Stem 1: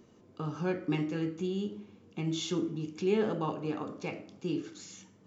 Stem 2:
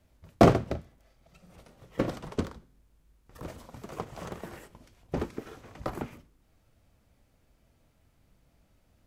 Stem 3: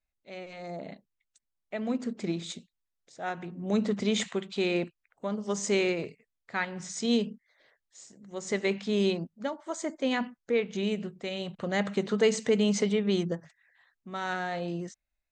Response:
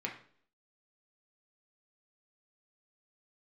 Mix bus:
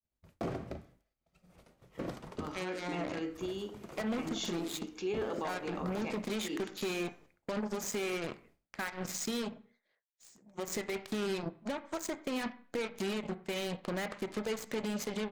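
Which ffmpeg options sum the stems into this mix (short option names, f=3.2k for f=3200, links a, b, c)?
-filter_complex "[0:a]highpass=370,adelay=2000,volume=0dB[a];[1:a]volume=-7.5dB,asplit=2[b][c];[c]volume=-10.5dB[d];[2:a]acompressor=threshold=-34dB:ratio=16,aeval=exprs='0.0335*(cos(1*acos(clip(val(0)/0.0335,-1,1)))-cos(1*PI/2))+0.00335*(cos(2*acos(clip(val(0)/0.0335,-1,1)))-cos(2*PI/2))+0.00668*(cos(7*acos(clip(val(0)/0.0335,-1,1)))-cos(7*PI/2))':c=same,adelay=2250,volume=2.5dB,asplit=2[e][f];[f]volume=-8.5dB[g];[3:a]atrim=start_sample=2205[h];[d][g]amix=inputs=2:normalize=0[i];[i][h]afir=irnorm=-1:irlink=0[j];[a][b][e][j]amix=inputs=4:normalize=0,agate=range=-33dB:threshold=-58dB:ratio=3:detection=peak,alimiter=level_in=3dB:limit=-24dB:level=0:latency=1:release=66,volume=-3dB"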